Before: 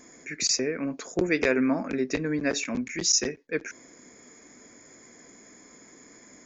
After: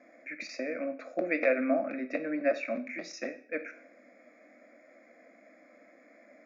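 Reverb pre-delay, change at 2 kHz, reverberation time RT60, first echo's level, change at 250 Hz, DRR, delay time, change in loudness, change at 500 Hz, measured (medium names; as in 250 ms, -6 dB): 6 ms, -4.0 dB, 0.50 s, no echo, -6.5 dB, 8.5 dB, no echo, -6.0 dB, -1.5 dB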